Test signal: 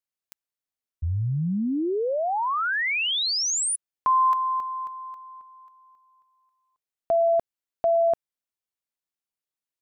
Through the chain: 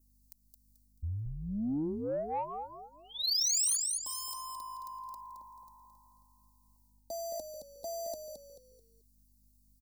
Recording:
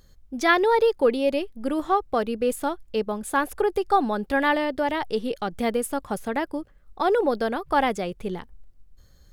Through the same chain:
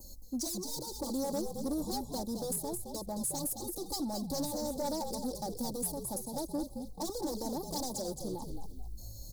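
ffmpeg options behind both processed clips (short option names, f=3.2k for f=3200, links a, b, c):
-filter_complex "[0:a]aeval=exprs='0.0841*(abs(mod(val(0)/0.0841+3,4)-2)-1)':c=same,areverse,acompressor=threshold=-35dB:ratio=8:attack=0.23:release=304:knee=1:detection=rms,areverse,asuperstop=centerf=2000:order=12:qfactor=0.65,crystalizer=i=4:c=0,equalizer=f=200:w=0.37:g=3.5,acrossover=split=140|1600[a][b][c];[b]acompressor=threshold=-36dB:ratio=6:attack=57:release=167:knee=2.83:detection=peak[d];[a][d][c]amix=inputs=3:normalize=0,aeval=exprs='val(0)+0.000355*(sin(2*PI*50*n/s)+sin(2*PI*2*50*n/s)/2+sin(2*PI*3*50*n/s)/3+sin(2*PI*4*50*n/s)/4+sin(2*PI*5*50*n/s)/5)':c=same,alimiter=limit=-24dB:level=0:latency=1:release=339,aecho=1:1:3.5:0.72,adynamicequalizer=threshold=0.00158:dfrequency=3700:dqfactor=2.7:tfrequency=3700:tqfactor=2.7:attack=5:release=100:ratio=0.375:range=2.5:mode=cutabove:tftype=bell,asplit=2[e][f];[f]asplit=4[g][h][i][j];[g]adelay=218,afreqshift=-54,volume=-7dB[k];[h]adelay=436,afreqshift=-108,volume=-15.9dB[l];[i]adelay=654,afreqshift=-162,volume=-24.7dB[m];[j]adelay=872,afreqshift=-216,volume=-33.6dB[n];[k][l][m][n]amix=inputs=4:normalize=0[o];[e][o]amix=inputs=2:normalize=0,asoftclip=type=tanh:threshold=-25.5dB"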